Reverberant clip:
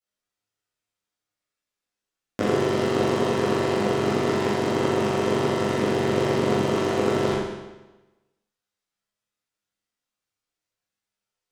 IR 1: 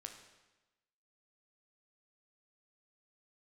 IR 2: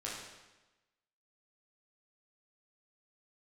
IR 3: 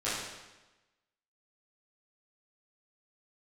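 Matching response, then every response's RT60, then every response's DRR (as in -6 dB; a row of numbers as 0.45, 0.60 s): 3; 1.1, 1.1, 1.1 s; 3.5, -6.0, -12.5 dB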